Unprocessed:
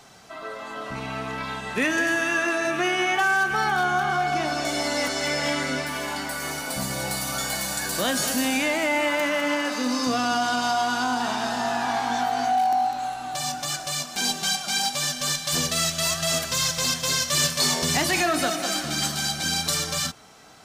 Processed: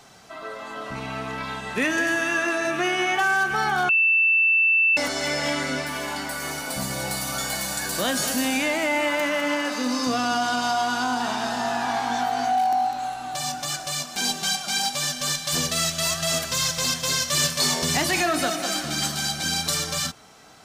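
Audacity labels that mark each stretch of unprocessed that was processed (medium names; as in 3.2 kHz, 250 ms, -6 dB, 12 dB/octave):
3.890000	4.970000	bleep 2.66 kHz -15.5 dBFS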